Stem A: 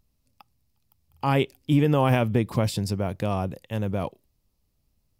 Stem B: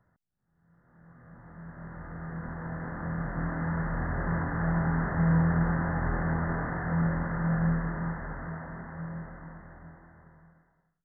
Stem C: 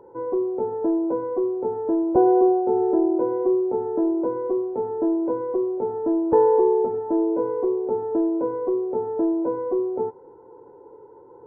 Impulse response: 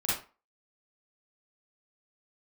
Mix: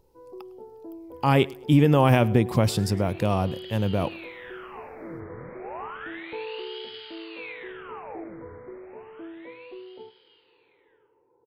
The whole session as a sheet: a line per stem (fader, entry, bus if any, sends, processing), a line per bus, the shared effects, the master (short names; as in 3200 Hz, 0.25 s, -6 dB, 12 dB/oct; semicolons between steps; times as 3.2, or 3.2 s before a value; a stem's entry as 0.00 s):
+2.5 dB, 0.00 s, no send, echo send -22.5 dB, dry
-12.5 dB, 0.45 s, send -15.5 dB, no echo send, ring modulator with a swept carrier 1700 Hz, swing 85%, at 0.31 Hz
-19.0 dB, 0.00 s, no send, echo send -22 dB, dry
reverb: on, RT60 0.35 s, pre-delay 37 ms
echo: feedback echo 0.105 s, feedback 28%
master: dry